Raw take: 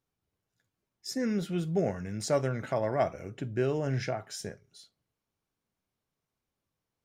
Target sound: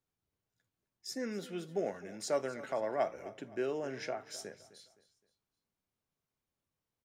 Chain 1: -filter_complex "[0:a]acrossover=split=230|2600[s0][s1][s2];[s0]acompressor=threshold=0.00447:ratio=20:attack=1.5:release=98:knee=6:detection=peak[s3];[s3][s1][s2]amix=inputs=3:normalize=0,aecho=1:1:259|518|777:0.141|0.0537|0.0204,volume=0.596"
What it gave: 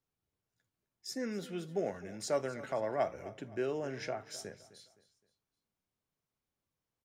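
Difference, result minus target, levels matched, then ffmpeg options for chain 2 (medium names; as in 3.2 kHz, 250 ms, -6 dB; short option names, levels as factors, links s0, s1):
compression: peak gain reduction -11.5 dB
-filter_complex "[0:a]acrossover=split=230|2600[s0][s1][s2];[s0]acompressor=threshold=0.00112:ratio=20:attack=1.5:release=98:knee=6:detection=peak[s3];[s3][s1][s2]amix=inputs=3:normalize=0,aecho=1:1:259|518|777:0.141|0.0537|0.0204,volume=0.596"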